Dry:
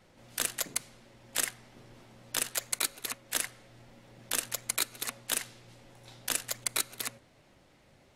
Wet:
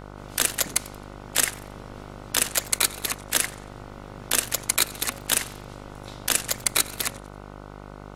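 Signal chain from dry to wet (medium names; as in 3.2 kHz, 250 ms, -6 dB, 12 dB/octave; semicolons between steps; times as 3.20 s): mains buzz 50 Hz, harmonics 30, -50 dBFS -3 dB/octave; modulated delay 91 ms, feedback 35%, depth 176 cents, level -20 dB; trim +8.5 dB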